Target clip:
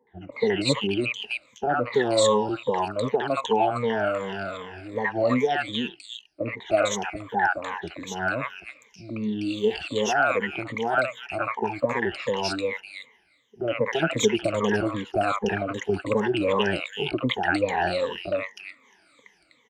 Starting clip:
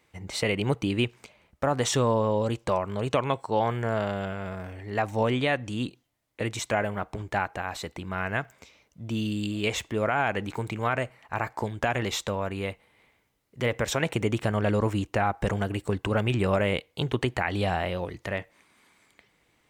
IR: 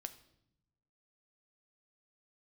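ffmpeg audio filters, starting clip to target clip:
-filter_complex "[0:a]afftfilt=real='re*pow(10,24/40*sin(2*PI*(1*log(max(b,1)*sr/1024/100)/log(2)-(-2.6)*(pts-256)/sr)))':imag='im*pow(10,24/40*sin(2*PI*(1*log(max(b,1)*sr/1024/100)/log(2)-(-2.6)*(pts-256)/sr)))':win_size=1024:overlap=0.75,acrossover=split=220 7400:gain=0.224 1 0.1[a][b][c];[a][b][c]amix=inputs=3:normalize=0,acrossover=split=830|2600[d][e][f];[e]adelay=70[g];[f]adelay=320[h];[d][g][h]amix=inputs=3:normalize=0"

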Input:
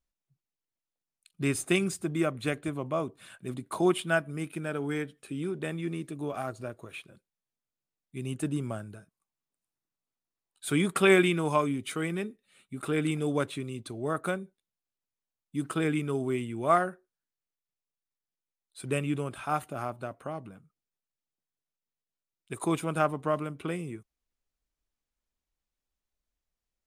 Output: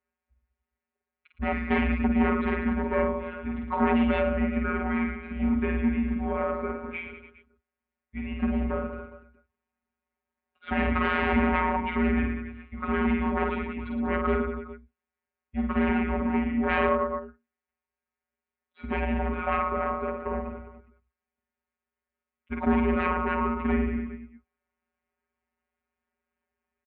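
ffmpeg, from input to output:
-af "aecho=1:1:50|112.5|190.6|288.3|410.4:0.631|0.398|0.251|0.158|0.1,aresample=11025,aeval=exprs='0.398*sin(PI/2*6.31*val(0)/0.398)':c=same,aresample=44100,afftfilt=real='hypot(re,im)*cos(PI*b)':imag='0':win_size=1024:overlap=0.75,highpass=f=190:t=q:w=0.5412,highpass=f=190:t=q:w=1.307,lowpass=f=2.5k:t=q:w=0.5176,lowpass=f=2.5k:t=q:w=0.7071,lowpass=f=2.5k:t=q:w=1.932,afreqshift=-110,volume=-8dB"

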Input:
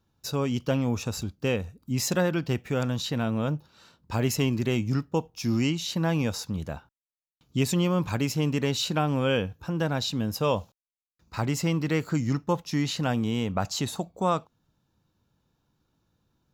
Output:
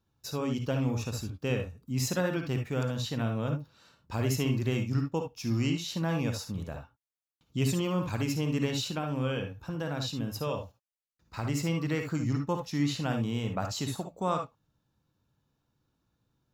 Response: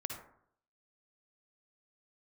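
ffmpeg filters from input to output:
-filter_complex "[0:a]asettb=1/sr,asplit=3[a][b][c];[a]atrim=end=8.794[d];[b]atrim=start=8.79:end=11.45,asetpts=PTS-STARTPTS,afade=t=in:d=0.004:c=qsin,afade=t=out:st=2.656:d=0.004:c=qsin,acompressor=threshold=-26dB:ratio=2.5[e];[c]atrim=start=11.446[f];[d][e]acrossfade=d=0.004:c1=hsin:c2=qsin[g];[g][f]acrossfade=d=0.004:c1=qsin:c2=hsin[h];[1:a]atrim=start_sample=2205,atrim=end_sample=3528[i];[h][i]afir=irnorm=-1:irlink=0,volume=-3dB"

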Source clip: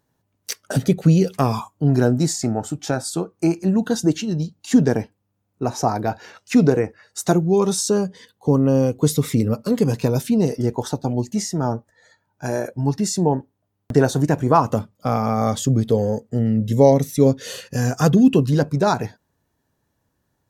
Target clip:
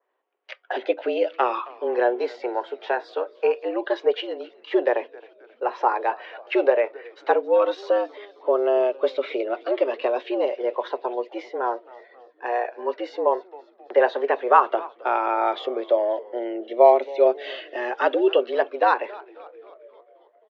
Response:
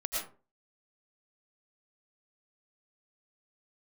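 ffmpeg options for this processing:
-filter_complex "[0:a]asplit=7[a][b][c][d][e][f][g];[b]adelay=267,afreqshift=-120,volume=-20dB[h];[c]adelay=534,afreqshift=-240,volume=-23.9dB[i];[d]adelay=801,afreqshift=-360,volume=-27.8dB[j];[e]adelay=1068,afreqshift=-480,volume=-31.6dB[k];[f]adelay=1335,afreqshift=-600,volume=-35.5dB[l];[g]adelay=1602,afreqshift=-720,volume=-39.4dB[m];[a][h][i][j][k][l][m]amix=inputs=7:normalize=0,highpass=f=300:t=q:w=0.5412,highpass=f=300:t=q:w=1.307,lowpass=f=3k:t=q:w=0.5176,lowpass=f=3k:t=q:w=0.7071,lowpass=f=3k:t=q:w=1.932,afreqshift=120,adynamicequalizer=threshold=0.0126:dfrequency=2300:dqfactor=0.7:tfrequency=2300:tqfactor=0.7:attack=5:release=100:ratio=0.375:range=3.5:mode=boostabove:tftype=highshelf"

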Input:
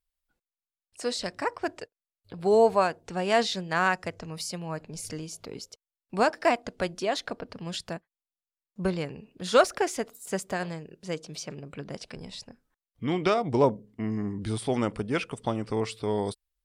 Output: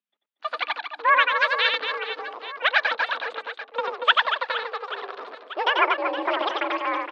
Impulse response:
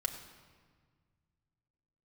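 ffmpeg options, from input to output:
-filter_complex "[0:a]acrossover=split=2500[a][b];[a]lowshelf=f=320:g=5[c];[b]aeval=exprs='val(0)*gte(abs(val(0)),0.00631)':c=same[d];[c][d]amix=inputs=2:normalize=0,asetrate=103194,aresample=44100,aecho=1:1:90|234|464.4|833|1423:0.631|0.398|0.251|0.158|0.1,highpass=f=160:t=q:w=0.5412,highpass=f=160:t=q:w=1.307,lowpass=f=3.5k:t=q:w=0.5176,lowpass=f=3.5k:t=q:w=0.7071,lowpass=f=3.5k:t=q:w=1.932,afreqshift=66,aemphasis=mode=production:type=riaa"

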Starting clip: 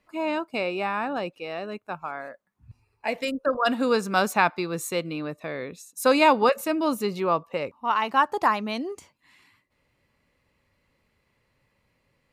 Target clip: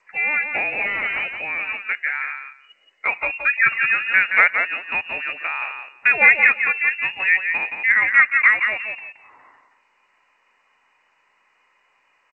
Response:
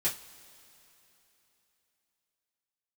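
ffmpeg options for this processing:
-filter_complex "[0:a]acrossover=split=590 2200:gain=0.126 1 0.0708[a][b][c];[a][b][c]amix=inputs=3:normalize=0,asplit=2[d][e];[e]acompressor=threshold=-36dB:ratio=6,volume=2dB[f];[d][f]amix=inputs=2:normalize=0,asplit=3[g][h][i];[g]afade=t=out:st=0.81:d=0.02[j];[h]aeval=exprs='0.0531*(abs(mod(val(0)/0.0531+3,4)-2)-1)':c=same,afade=t=in:st=0.81:d=0.02,afade=t=out:st=1.59:d=0.02[k];[i]afade=t=in:st=1.59:d=0.02[l];[j][k][l]amix=inputs=3:normalize=0,asplit=2[m][n];[n]aecho=0:1:173|346|519:0.473|0.0757|0.0121[o];[m][o]amix=inputs=2:normalize=0,lowpass=f=2.6k:t=q:w=0.5098,lowpass=f=2.6k:t=q:w=0.6013,lowpass=f=2.6k:t=q:w=0.9,lowpass=f=2.6k:t=q:w=2.563,afreqshift=-3000,volume=6.5dB" -ar 16000 -c:a g722

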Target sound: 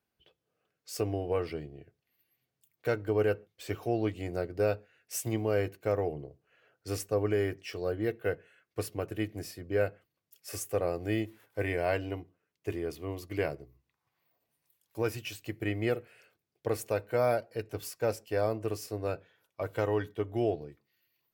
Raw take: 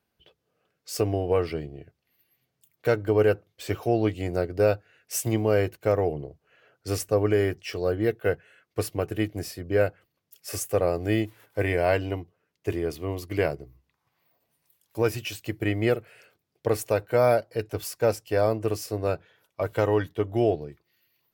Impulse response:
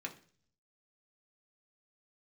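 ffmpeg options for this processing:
-filter_complex "[0:a]asplit=2[a][b];[1:a]atrim=start_sample=2205,atrim=end_sample=6615[c];[b][c]afir=irnorm=-1:irlink=0,volume=-12.5dB[d];[a][d]amix=inputs=2:normalize=0,volume=-7.5dB"

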